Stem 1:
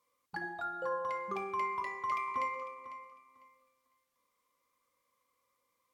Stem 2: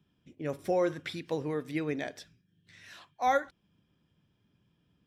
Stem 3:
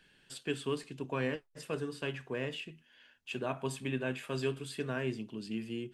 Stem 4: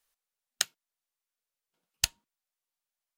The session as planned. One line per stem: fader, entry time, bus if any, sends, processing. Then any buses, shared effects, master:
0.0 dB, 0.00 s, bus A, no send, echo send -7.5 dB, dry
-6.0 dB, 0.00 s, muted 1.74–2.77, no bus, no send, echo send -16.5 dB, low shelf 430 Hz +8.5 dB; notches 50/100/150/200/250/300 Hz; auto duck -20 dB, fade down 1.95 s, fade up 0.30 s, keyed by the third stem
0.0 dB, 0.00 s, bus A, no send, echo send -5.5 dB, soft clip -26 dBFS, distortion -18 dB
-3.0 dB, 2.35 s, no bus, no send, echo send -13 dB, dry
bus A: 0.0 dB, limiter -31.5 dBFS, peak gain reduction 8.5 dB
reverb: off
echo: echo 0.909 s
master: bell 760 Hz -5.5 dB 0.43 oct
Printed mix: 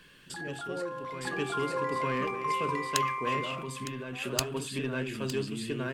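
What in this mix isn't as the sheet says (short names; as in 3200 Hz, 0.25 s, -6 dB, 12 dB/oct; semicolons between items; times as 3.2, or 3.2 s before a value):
stem 1 0.0 dB -> +10.5 dB; stem 3 0.0 dB -> +8.5 dB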